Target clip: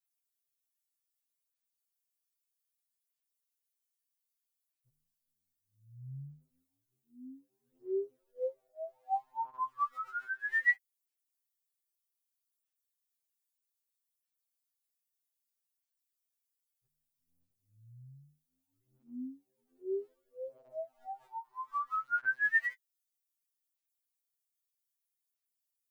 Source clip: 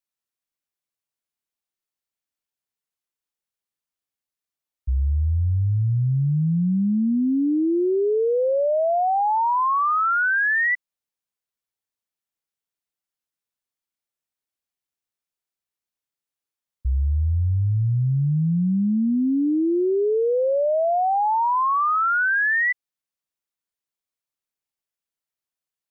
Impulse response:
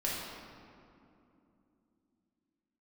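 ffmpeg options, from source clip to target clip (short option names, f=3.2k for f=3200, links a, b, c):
-af "aderivative,aphaser=in_gain=1:out_gain=1:delay=2.8:decay=0.67:speed=0.63:type=sinusoidal,afftfilt=real='re*2.45*eq(mod(b,6),0)':imag='im*2.45*eq(mod(b,6),0)':win_size=2048:overlap=0.75"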